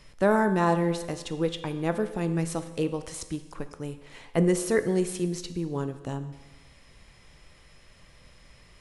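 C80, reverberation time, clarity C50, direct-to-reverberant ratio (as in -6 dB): 13.5 dB, 1.2 s, 11.5 dB, 9.5 dB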